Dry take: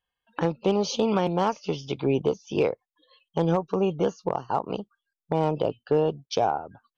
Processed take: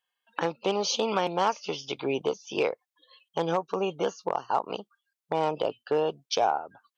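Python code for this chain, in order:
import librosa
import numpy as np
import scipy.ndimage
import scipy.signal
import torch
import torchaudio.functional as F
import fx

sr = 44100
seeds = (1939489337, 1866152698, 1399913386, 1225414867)

y = fx.highpass(x, sr, hz=890.0, slope=6)
y = y * 10.0 ** (3.5 / 20.0)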